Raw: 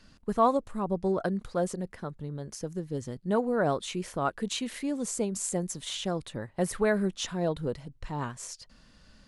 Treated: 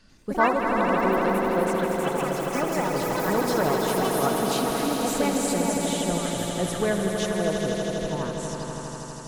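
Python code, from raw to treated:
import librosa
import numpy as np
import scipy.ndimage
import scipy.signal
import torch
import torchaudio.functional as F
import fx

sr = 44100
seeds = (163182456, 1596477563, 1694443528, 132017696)

y = fx.echo_pitch(x, sr, ms=94, semitones=5, count=3, db_per_echo=-3.0)
y = fx.echo_swell(y, sr, ms=81, loudest=5, wet_db=-7.5)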